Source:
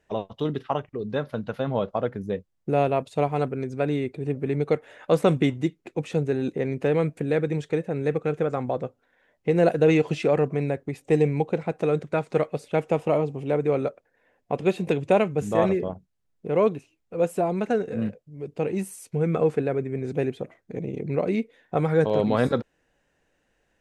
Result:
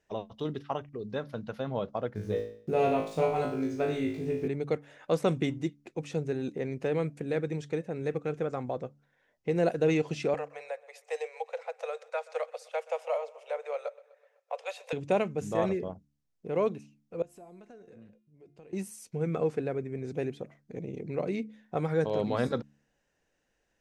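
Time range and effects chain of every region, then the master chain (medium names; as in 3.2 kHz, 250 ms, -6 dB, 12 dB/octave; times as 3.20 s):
2.15–4.48 s: bass shelf 79 Hz +11 dB + small samples zeroed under -49 dBFS + flutter echo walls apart 3.2 m, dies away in 0.52 s
10.34–14.93 s: steep high-pass 480 Hz 96 dB/octave + feedback delay 126 ms, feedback 59%, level -21.5 dB
17.22–18.73 s: compression 4:1, threshold -32 dBFS + feedback comb 350 Hz, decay 0.78 s, mix 70%
whole clip: peaking EQ 5.6 kHz +6.5 dB 0.71 oct; de-hum 71.86 Hz, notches 4; trim -7 dB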